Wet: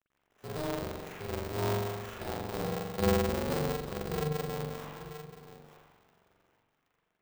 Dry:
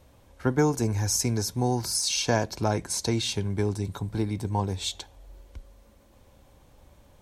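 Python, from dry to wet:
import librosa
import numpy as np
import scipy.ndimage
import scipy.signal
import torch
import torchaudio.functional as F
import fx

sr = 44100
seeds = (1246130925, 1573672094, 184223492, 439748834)

p1 = fx.doppler_pass(x, sr, speed_mps=12, closest_m=6.8, pass_at_s=3.22)
p2 = fx.env_lowpass_down(p1, sr, base_hz=390.0, full_db=-25.5)
p3 = fx.ladder_highpass(p2, sr, hz=230.0, resonance_pct=45)
p4 = fx.hpss(p3, sr, part='percussive', gain_db=-11)
p5 = fx.dynamic_eq(p4, sr, hz=970.0, q=1.1, threshold_db=-58.0, ratio=4.0, max_db=5)
p6 = fx.over_compress(p5, sr, threshold_db=-50.0, ratio=-1.0)
p7 = p5 + F.gain(torch.from_numpy(p6), -3.0).numpy()
p8 = fx.quant_companded(p7, sr, bits=6)
p9 = fx.spec_box(p8, sr, start_s=3.9, length_s=0.92, low_hz=340.0, high_hz=3300.0, gain_db=-8)
p10 = fx.sample_hold(p9, sr, seeds[0], rate_hz=4400.0, jitter_pct=0)
p11 = p10 + 10.0 ** (-13.0 / 20.0) * np.pad(p10, (int(889 * sr / 1000.0), 0))[:len(p10)]
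p12 = fx.rev_spring(p11, sr, rt60_s=1.4, pass_ms=(43,), chirp_ms=75, drr_db=-6.0)
y = p12 * np.sign(np.sin(2.0 * np.pi * 150.0 * np.arange(len(p12)) / sr))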